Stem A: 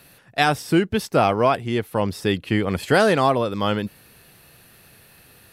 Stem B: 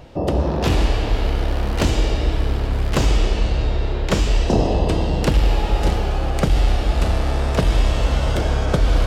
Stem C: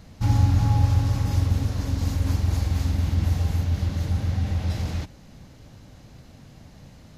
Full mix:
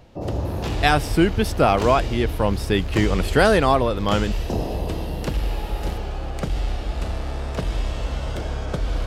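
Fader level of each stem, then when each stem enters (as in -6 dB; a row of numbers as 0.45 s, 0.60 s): +0.5 dB, -8.0 dB, -11.5 dB; 0.45 s, 0.00 s, 0.00 s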